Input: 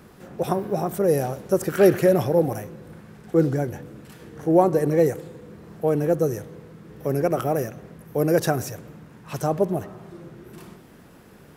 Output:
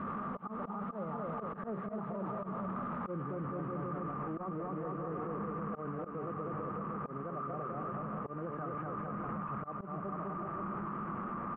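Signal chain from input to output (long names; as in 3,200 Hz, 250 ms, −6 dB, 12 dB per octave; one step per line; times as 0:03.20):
linear delta modulator 16 kbit/s, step −25.5 dBFS
source passing by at 0:03.18, 27 m/s, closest 4.1 metres
pitch shifter +1 semitone
parametric band 200 Hz +14 dB 0.56 octaves
on a send: bouncing-ball delay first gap 240 ms, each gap 0.85×, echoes 5
on the sum: automatic gain control gain up to 10.5 dB
mains-hum notches 60/120/180 Hz
volume swells 504 ms
low-pass with resonance 1,200 Hz, resonance Q 15
reversed playback
downward compressor 6 to 1, threshold −43 dBFS, peak gain reduction 27 dB
reversed playback
brickwall limiter −43 dBFS, peak gain reduction 14.5 dB
level +12 dB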